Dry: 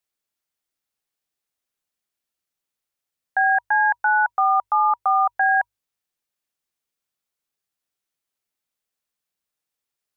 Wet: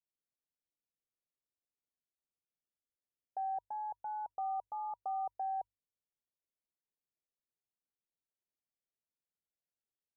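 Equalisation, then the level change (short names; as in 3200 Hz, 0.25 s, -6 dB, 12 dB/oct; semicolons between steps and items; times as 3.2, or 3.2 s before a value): inverse Chebyshev low-pass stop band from 1800 Hz, stop band 50 dB; air absorption 450 m; -8.5 dB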